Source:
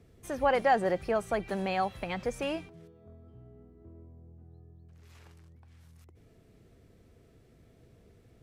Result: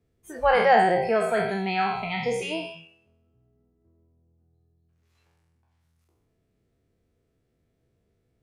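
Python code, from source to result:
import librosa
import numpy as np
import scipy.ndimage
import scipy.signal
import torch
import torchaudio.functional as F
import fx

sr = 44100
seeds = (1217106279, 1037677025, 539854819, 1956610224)

y = fx.spec_trails(x, sr, decay_s=1.13)
y = fx.noise_reduce_blind(y, sr, reduce_db=19)
y = y * librosa.db_to_amplitude(4.0)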